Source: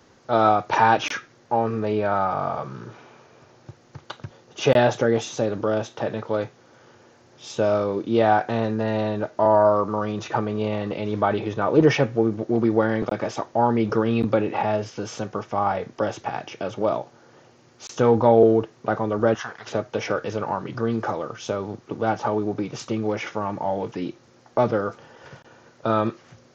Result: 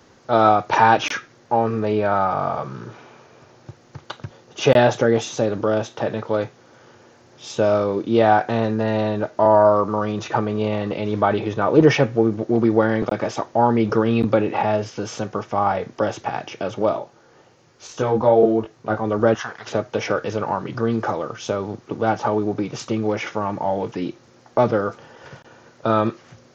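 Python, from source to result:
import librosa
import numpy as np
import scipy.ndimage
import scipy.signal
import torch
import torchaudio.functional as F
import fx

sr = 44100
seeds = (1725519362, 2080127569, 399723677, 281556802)

y = fx.chorus_voices(x, sr, voices=6, hz=1.0, base_ms=21, depth_ms=3.0, mix_pct=45, at=(16.91, 19.04), fade=0.02)
y = y * librosa.db_to_amplitude(3.0)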